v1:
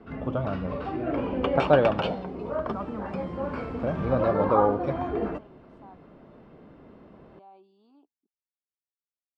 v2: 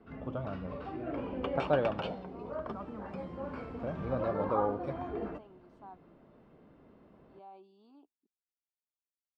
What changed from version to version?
background -9.0 dB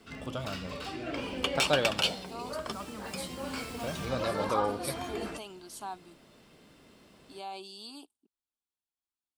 speech +9.5 dB; master: remove low-pass 1.1 kHz 12 dB/octave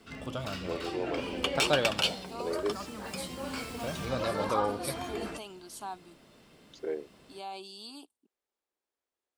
first voice: unmuted

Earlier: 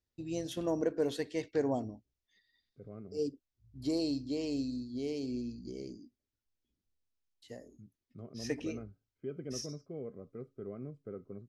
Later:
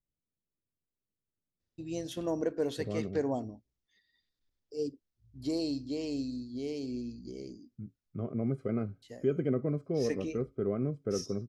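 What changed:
first voice: entry +1.60 s; second voice +11.5 dB

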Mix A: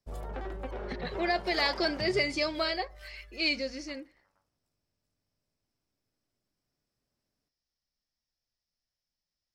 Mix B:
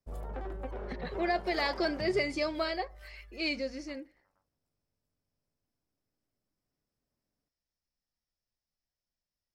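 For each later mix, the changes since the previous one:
background: send off; master: add peaking EQ 4.3 kHz -6.5 dB 2.3 oct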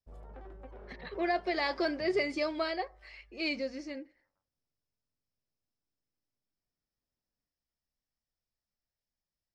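background -9.5 dB; master: add distance through air 57 m

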